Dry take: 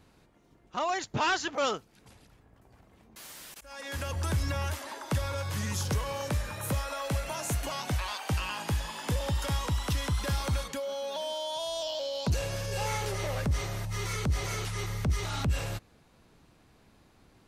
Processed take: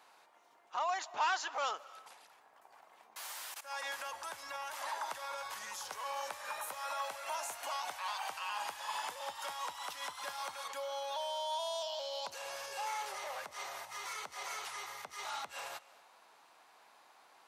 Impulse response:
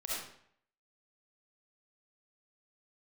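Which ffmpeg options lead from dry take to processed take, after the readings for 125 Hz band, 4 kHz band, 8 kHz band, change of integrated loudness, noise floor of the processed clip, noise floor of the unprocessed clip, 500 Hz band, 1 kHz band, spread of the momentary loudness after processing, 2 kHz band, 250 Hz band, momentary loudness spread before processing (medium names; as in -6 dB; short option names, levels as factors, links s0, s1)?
under -40 dB, -6.0 dB, -6.5 dB, -7.5 dB, -64 dBFS, -62 dBFS, -9.0 dB, -2.0 dB, 7 LU, -5.0 dB, -28.0 dB, 5 LU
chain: -filter_complex "[0:a]alimiter=level_in=2.66:limit=0.0631:level=0:latency=1:release=164,volume=0.376,highpass=f=850:t=q:w=2,asplit=2[s0][s1];[1:a]atrim=start_sample=2205,adelay=150[s2];[s1][s2]afir=irnorm=-1:irlink=0,volume=0.0794[s3];[s0][s3]amix=inputs=2:normalize=0,volume=1.12"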